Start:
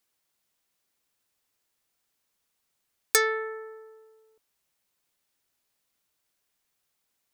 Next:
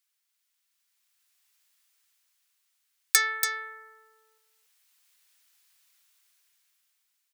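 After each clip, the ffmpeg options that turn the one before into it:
-af "highpass=1500,dynaudnorm=f=290:g=9:m=3.98,aecho=1:1:284:0.447,volume=0.891"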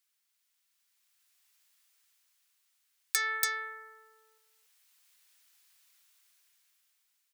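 -af "alimiter=limit=0.266:level=0:latency=1:release=203"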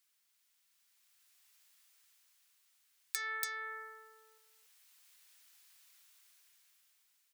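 -af "acompressor=threshold=0.01:ratio=3,volume=1.26"

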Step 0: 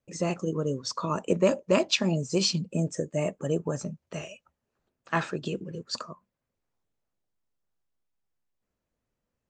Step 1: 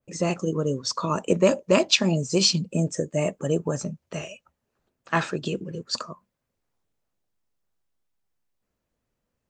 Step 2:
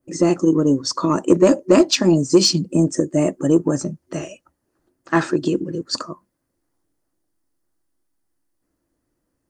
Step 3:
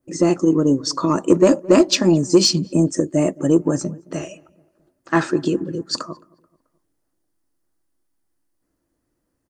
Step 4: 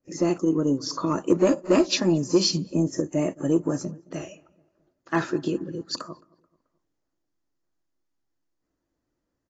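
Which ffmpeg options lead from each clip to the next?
-af "adynamicequalizer=threshold=0.0112:dfrequency=2700:dqfactor=0.7:tfrequency=2700:tqfactor=0.7:attack=5:release=100:ratio=0.375:range=1.5:mode=boostabove:tftype=highshelf,volume=1.5"
-af "superequalizer=6b=3.55:12b=0.501:13b=0.562:16b=2,acontrast=33,volume=0.891"
-filter_complex "[0:a]asplit=2[s0][s1];[s1]adelay=217,lowpass=f=1500:p=1,volume=0.0708,asplit=2[s2][s3];[s3]adelay=217,lowpass=f=1500:p=1,volume=0.5,asplit=2[s4][s5];[s5]adelay=217,lowpass=f=1500:p=1,volume=0.5[s6];[s0][s2][s4][s6]amix=inputs=4:normalize=0"
-af "volume=0.473" -ar 16000 -c:a aac -b:a 24k

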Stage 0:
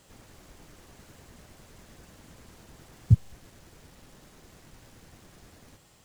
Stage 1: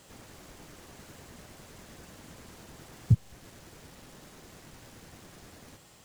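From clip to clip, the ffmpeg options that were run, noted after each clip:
-af "lowshelf=f=70:g=-8,alimiter=limit=0.168:level=0:latency=1:release=350,volume=1.5"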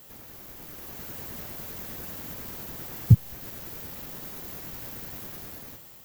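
-af "dynaudnorm=f=240:g=7:m=2.24,aexciter=amount=8.9:drive=3.3:freq=12000"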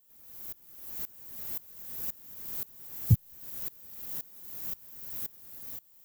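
-af "crystalizer=i=2:c=0,aeval=exprs='val(0)*pow(10,-23*if(lt(mod(-1.9*n/s,1),2*abs(-1.9)/1000),1-mod(-1.9*n/s,1)/(2*abs(-1.9)/1000),(mod(-1.9*n/s,1)-2*abs(-1.9)/1000)/(1-2*abs(-1.9)/1000))/20)':c=same,volume=0.531"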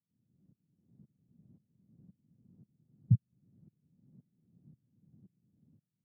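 -af "asuperpass=centerf=160:order=4:qfactor=1.4,volume=0.891"

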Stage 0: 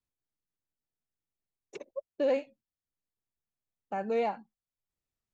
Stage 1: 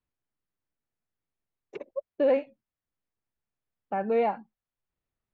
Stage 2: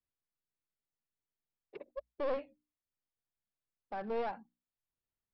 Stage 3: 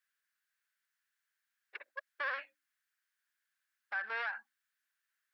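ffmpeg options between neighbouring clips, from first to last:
-af "lowpass=2400,volume=1.68"
-af "aresample=11025,aeval=exprs='clip(val(0),-1,0.0335)':c=same,aresample=44100,bandreject=f=60:t=h:w=6,bandreject=f=120:t=h:w=6,bandreject=f=180:t=h:w=6,bandreject=f=240:t=h:w=6,bandreject=f=300:t=h:w=6,volume=0.376"
-af "highpass=f=1600:t=q:w=5.8,alimiter=level_in=3.35:limit=0.0631:level=0:latency=1:release=112,volume=0.299,volume=2.11"

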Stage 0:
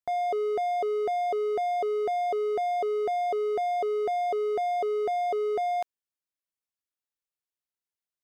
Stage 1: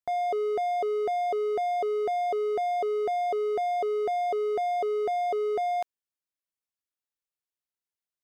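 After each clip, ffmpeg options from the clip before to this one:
-af anull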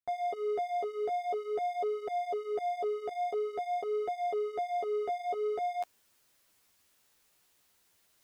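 -af "areverse,acompressor=mode=upward:threshold=0.01:ratio=2.5,areverse,flanger=delay=7.7:depth=8.7:regen=-3:speed=0.48:shape=triangular,volume=0.708"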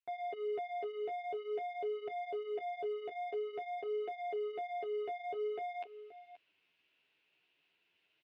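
-filter_complex "[0:a]highpass=190,equalizer=f=220:t=q:w=4:g=-9,equalizer=f=550:t=q:w=4:g=-7,equalizer=f=820:t=q:w=4:g=-7,equalizer=f=1200:t=q:w=4:g=-10,equalizer=f=1800:t=q:w=4:g=-4,equalizer=f=2700:t=q:w=4:g=10,lowpass=f=3200:w=0.5412,lowpass=f=3200:w=1.3066,aecho=1:1:528:0.178,asplit=2[s0][s1];[s1]asoftclip=type=hard:threshold=0.0106,volume=0.282[s2];[s0][s2]amix=inputs=2:normalize=0,volume=0.668"

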